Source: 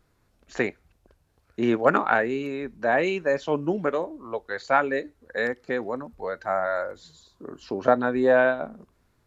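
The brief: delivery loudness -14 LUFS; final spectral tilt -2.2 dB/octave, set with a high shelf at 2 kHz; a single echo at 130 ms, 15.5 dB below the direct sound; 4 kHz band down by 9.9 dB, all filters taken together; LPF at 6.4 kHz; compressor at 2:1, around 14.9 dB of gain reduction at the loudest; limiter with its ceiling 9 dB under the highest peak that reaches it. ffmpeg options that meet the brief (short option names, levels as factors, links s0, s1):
-af "lowpass=6400,highshelf=f=2000:g=-6,equalizer=f=4000:t=o:g=-7,acompressor=threshold=0.00708:ratio=2,alimiter=level_in=1.58:limit=0.0631:level=0:latency=1,volume=0.631,aecho=1:1:130:0.168,volume=21.1"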